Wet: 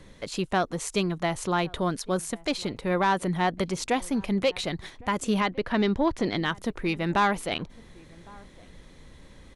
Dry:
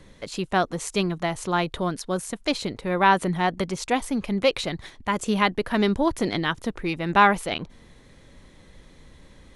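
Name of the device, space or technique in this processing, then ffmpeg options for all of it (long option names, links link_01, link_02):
soft clipper into limiter: -filter_complex "[0:a]asoftclip=type=tanh:threshold=-10dB,alimiter=limit=-15dB:level=0:latency=1:release=390,asettb=1/sr,asplit=3[link_01][link_02][link_03];[link_01]atrim=end=5.404[link_04];[link_02]atrim=start=5.4:end=6.37,asetpts=PTS-STARTPTS,afade=type=in:duration=0.004:curve=qsin,afade=type=out:start_time=0.966:duration=0.004:curve=qsin,lowpass=5500[link_05];[link_03]atrim=start=6.366[link_06];[link_04][link_05]acrossfade=duration=0.004:curve1=hsin:curve2=qsin[link_07];[link_07][link_06]acrossfade=duration=0.004:curve1=qsin:curve2=hsin,asplit=2[link_08][link_09];[link_09]adelay=1108,volume=-24dB,highshelf=frequency=4000:gain=-24.9[link_10];[link_08][link_10]amix=inputs=2:normalize=0"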